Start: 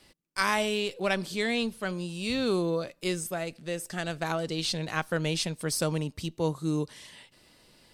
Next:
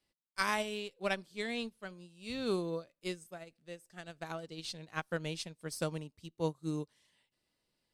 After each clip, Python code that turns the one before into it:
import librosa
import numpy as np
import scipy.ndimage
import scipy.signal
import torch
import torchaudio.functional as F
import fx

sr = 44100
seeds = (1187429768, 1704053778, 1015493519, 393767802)

y = fx.upward_expand(x, sr, threshold_db=-37.0, expansion=2.5)
y = y * librosa.db_to_amplitude(-4.0)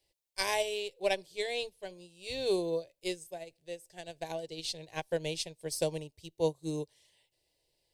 y = fx.fixed_phaser(x, sr, hz=540.0, stages=4)
y = y * librosa.db_to_amplitude(6.5)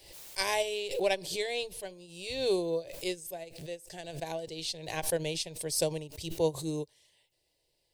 y = fx.pre_swell(x, sr, db_per_s=74.0)
y = y * librosa.db_to_amplitude(1.0)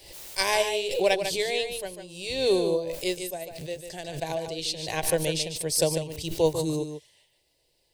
y = x + 10.0 ** (-8.0 / 20.0) * np.pad(x, (int(147 * sr / 1000.0), 0))[:len(x)]
y = y * librosa.db_to_amplitude(5.5)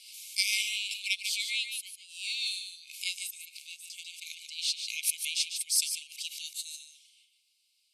y = fx.brickwall_bandpass(x, sr, low_hz=2100.0, high_hz=13000.0)